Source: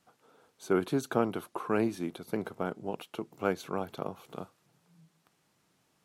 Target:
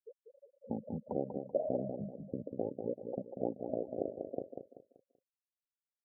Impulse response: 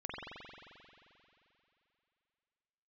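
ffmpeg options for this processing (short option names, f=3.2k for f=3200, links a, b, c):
-af "acompressor=threshold=-47dB:ratio=3,asetrate=26222,aresample=44100,atempo=1.68179,lowpass=f=550:t=q:w=4.9,lowshelf=f=200:g=-9.5,afftfilt=real='re*gte(hypot(re,im),0.01)':imag='im*gte(hypot(re,im),0.01)':win_size=1024:overlap=0.75,aecho=1:1:192|384|576|768:0.473|0.156|0.0515|0.017,volume=7.5dB"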